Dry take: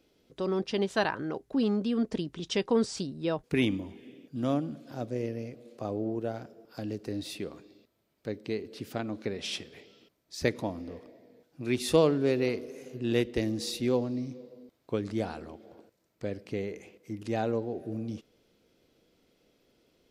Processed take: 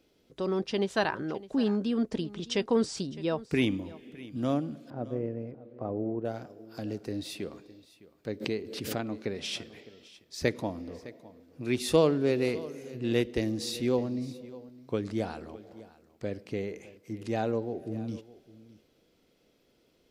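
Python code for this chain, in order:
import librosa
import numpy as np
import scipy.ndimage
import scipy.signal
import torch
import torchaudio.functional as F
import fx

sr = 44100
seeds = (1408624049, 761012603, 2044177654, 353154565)

y = fx.lowpass(x, sr, hz=1300.0, slope=12, at=(4.9, 6.25))
y = y + 10.0 ** (-19.0 / 20.0) * np.pad(y, (int(609 * sr / 1000.0), 0))[:len(y)]
y = fx.pre_swell(y, sr, db_per_s=59.0, at=(8.4, 9.04), fade=0.02)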